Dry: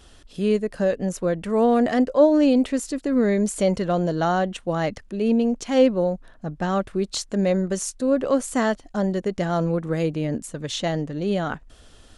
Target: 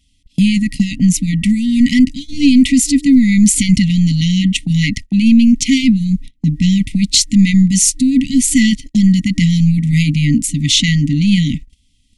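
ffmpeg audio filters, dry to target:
-af "apsyclip=20.5dB,afftfilt=real='re*(1-between(b*sr/4096,300,1900))':imag='im*(1-between(b*sr/4096,300,1900))':win_size=4096:overlap=0.75,agate=range=-26dB:threshold=-21dB:ratio=16:detection=peak,volume=-2.5dB"

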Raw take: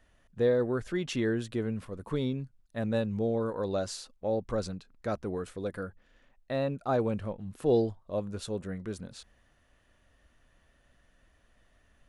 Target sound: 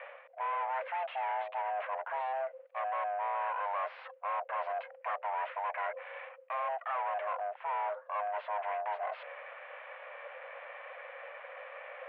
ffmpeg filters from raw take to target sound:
-filter_complex "[0:a]areverse,acompressor=threshold=-44dB:ratio=6,areverse,aeval=exprs='val(0)*sin(2*PI*260*n/s)':c=same,asplit=2[a][b];[b]highpass=f=720:p=1,volume=28dB,asoftclip=type=tanh:threshold=-34.5dB[c];[a][c]amix=inputs=2:normalize=0,lowpass=f=1.7k:p=1,volume=-6dB,highpass=f=280:t=q:w=0.5412,highpass=f=280:t=q:w=1.307,lowpass=f=2.5k:t=q:w=0.5176,lowpass=f=2.5k:t=q:w=0.7071,lowpass=f=2.5k:t=q:w=1.932,afreqshift=260,volume=8dB"

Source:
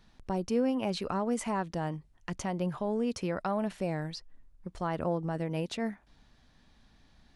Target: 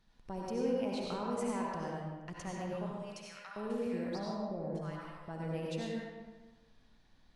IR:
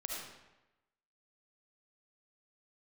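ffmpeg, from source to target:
-filter_complex "[0:a]asettb=1/sr,asplit=3[a][b][c];[a]atrim=end=2.864[d];[b]atrim=start=2.86:end=5.28,asetpts=PTS-STARTPTS,afade=t=in:d=0.004:c=qsin,afade=t=out:st=2.416:d=0.004:c=qsin,acrossover=split=1100[e][f];[e]adelay=700[g];[g][f]amix=inputs=2:normalize=0,atrim=end_sample=106722[h];[c]atrim=start=5.276[i];[d][h]acrossfade=d=0.004:c1=hsin:c2=qsin[j];[j][i]acrossfade=d=0.004:c1=qsin:c2=hsin[k];[1:a]atrim=start_sample=2205,asetrate=33957,aresample=44100[l];[k][l]afir=irnorm=-1:irlink=0,volume=-7.5dB"

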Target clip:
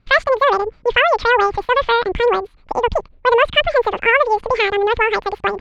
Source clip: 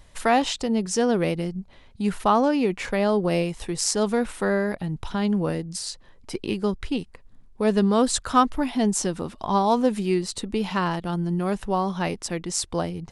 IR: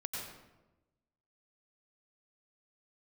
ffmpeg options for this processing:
-af "lowpass=f=1.6k:w=0.5412,lowpass=f=1.6k:w=1.3066,agate=range=-9dB:threshold=-40dB:ratio=16:detection=peak,dynaudnorm=f=120:g=3:m=9dB,asetrate=103194,aresample=44100"

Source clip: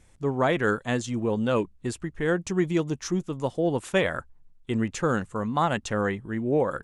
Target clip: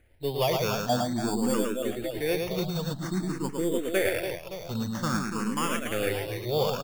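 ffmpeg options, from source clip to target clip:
-filter_complex "[0:a]aeval=exprs='if(lt(val(0),0),0.708*val(0),val(0))':c=same,asettb=1/sr,asplit=3[a][b][c];[a]atrim=end=0.894[d];[b]atrim=start=0.89:end=1.54,asetpts=PTS-STARTPTS,afade=t=in:d=0.004:c=qsin,afade=t=out:st=0.646:d=0.004:c=qsin,lowpass=f=700:t=q:w=4.9[e];[c]atrim=start=1.536[f];[d][e]acrossfade=d=0.004:c1=hsin:c2=qsin[g];[g][f]acrossfade=d=0.004:c1=qsin:c2=hsin,acrusher=samples=11:mix=1:aa=0.000001,asplit=2[h][i];[i]aecho=0:1:110|286|567.6|1018|1739:0.631|0.398|0.251|0.158|0.1[j];[h][j]amix=inputs=2:normalize=0,asplit=2[k][l];[l]afreqshift=0.5[m];[k][m]amix=inputs=2:normalize=1"

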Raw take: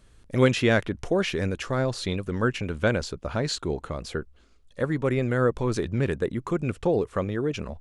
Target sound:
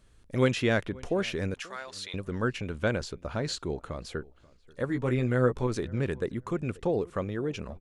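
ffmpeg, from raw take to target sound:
-filter_complex "[0:a]asettb=1/sr,asplit=3[a][b][c];[a]atrim=end=1.544[d];[b]atrim=start=1.54:end=2.14,asetpts=PTS-STARTPTS,afade=t=in:d=0.004:c=qsin,afade=t=out:st=0.596:d=0.004:c=qsin,highpass=1.2k[e];[c]atrim=start=2.136[f];[d][e]acrossfade=d=0.004:c1=hsin:c2=qsin[g];[g][f]acrossfade=d=0.004:c1=qsin:c2=hsin,asettb=1/sr,asplit=3[h][i][j];[h]atrim=end=4.874[k];[i]atrim=start=4.87:end=5.67,asetpts=PTS-STARTPTS,afade=t=in:d=0.004:c=qsin,afade=t=out:st=0.796:d=0.004:c=qsin,asplit=2[l][m];[m]adelay=16,volume=-4.5dB[n];[l][n]amix=inputs=2:normalize=0,atrim=end_sample=35280[o];[j]atrim=start=5.666[p];[k][o]acrossfade=d=0.004:c1=hsin:c2=qsin[q];[q][p]acrossfade=d=0.004:c1=qsin:c2=hsin,asplit=2[r][s];[s]adelay=535,lowpass=f=2.3k:p=1,volume=-23dB,asplit=2[t][u];[u]adelay=535,lowpass=f=2.3k:p=1,volume=0.19[v];[r][t][v]amix=inputs=3:normalize=0,volume=-4.5dB"

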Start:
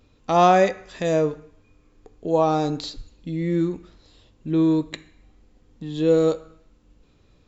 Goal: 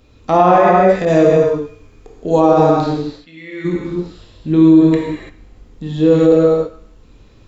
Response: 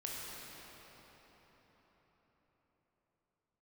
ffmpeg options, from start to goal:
-filter_complex "[0:a]asplit=3[a][b][c];[a]afade=t=out:st=2.9:d=0.02[d];[b]bandpass=f=2.2k:t=q:w=1.4:csg=0,afade=t=in:st=2.9:d=0.02,afade=t=out:st=3.64:d=0.02[e];[c]afade=t=in:st=3.64:d=0.02[f];[d][e][f]amix=inputs=3:normalize=0,acrossover=split=2200[g][h];[h]acompressor=threshold=-48dB:ratio=6[i];[g][i]amix=inputs=2:normalize=0[j];[1:a]atrim=start_sample=2205,afade=t=out:st=0.4:d=0.01,atrim=end_sample=18081[k];[j][k]afir=irnorm=-1:irlink=0,alimiter=level_in=12.5dB:limit=-1dB:release=50:level=0:latency=1,asettb=1/sr,asplit=3[l][m][n];[l]atrim=end=1.054[o];[m]atrim=start=1.05:end=2.4,asetpts=PTS-STARTPTS,afade=t=in:d=0.004:c=qsin,afade=t=out:st=1.346:d=0.004:c=qsin,adynamicequalizer=threshold=0.0282:dfrequency=2400:dqfactor=0.7:tfrequency=2400:tqfactor=0.7:attack=5:release=100:ratio=0.375:range=2.5:mode=boostabove:tftype=highshelf[p];[n]atrim=start=2.396[q];[o][p]acrossfade=d=0.004:c1=hsin:c2=qsin[r];[r][q]acrossfade=d=0.004:c1=qsin:c2=hsin,volume=-1dB"

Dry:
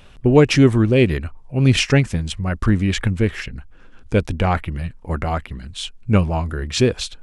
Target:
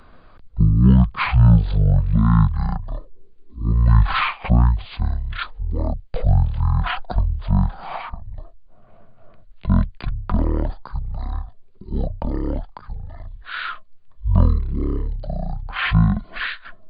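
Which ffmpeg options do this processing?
-filter_complex "[0:a]acrossover=split=490|3000[a][b][c];[b]acompressor=threshold=-27dB:ratio=6[d];[a][d][c]amix=inputs=3:normalize=0,asetrate=18846,aresample=44100"

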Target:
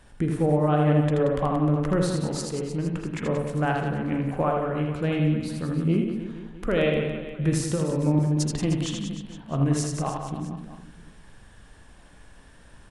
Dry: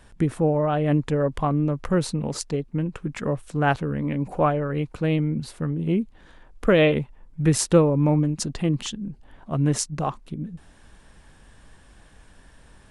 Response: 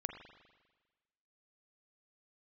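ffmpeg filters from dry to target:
-filter_complex "[0:a]alimiter=limit=-13.5dB:level=0:latency=1:release=484,asettb=1/sr,asplit=3[a][b][c];[a]atrim=end=7.524[d];[b]atrim=start=7.52:end=8.19,asetpts=PTS-STARTPTS,afade=t=in:d=0.004:c=qsin,afade=t=out:st=0.666:d=0.004:c=qsin,acrossover=split=370[e][f];[f]acompressor=threshold=-28dB:ratio=6[g];[e][g]amix=inputs=2:normalize=0[h];[c]atrim=start=8.186[i];[d][h]acrossfade=d=0.004:c1=hsin:c2=qsin[j];[j][i]acrossfade=d=0.004:c1=qsin:c2=hsin,aecho=1:1:80|180|305|461.2|656.6:0.631|0.398|0.251|0.158|0.1[k];[1:a]atrim=start_sample=2205,afade=t=out:st=0.16:d=0.01,atrim=end_sample=7497,asetrate=48510,aresample=44100[l];[k][l]afir=irnorm=-1:irlink=0,volume=1dB"

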